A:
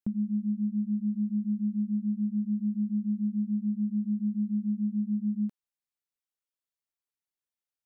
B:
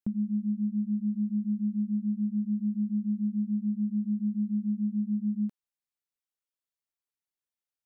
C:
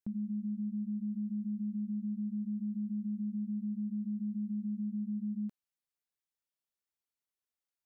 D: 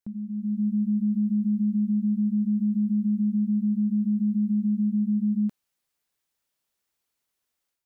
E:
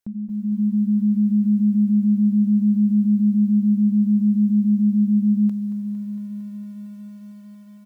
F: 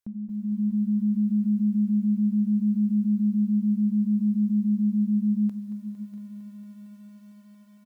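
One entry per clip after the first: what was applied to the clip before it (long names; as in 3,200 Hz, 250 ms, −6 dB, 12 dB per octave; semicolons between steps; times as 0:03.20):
no processing that can be heard
brickwall limiter −29 dBFS, peak gain reduction 6 dB; level −2.5 dB
automatic gain control gain up to 10 dB; level +2 dB
single-tap delay 221 ms −18 dB; feedback echo at a low word length 228 ms, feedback 80%, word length 10 bits, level −12 dB; level +4.5 dB
single-tap delay 643 ms −14 dB; on a send at −15 dB: convolution reverb RT60 0.60 s, pre-delay 3 ms; on the sum: level −4.5 dB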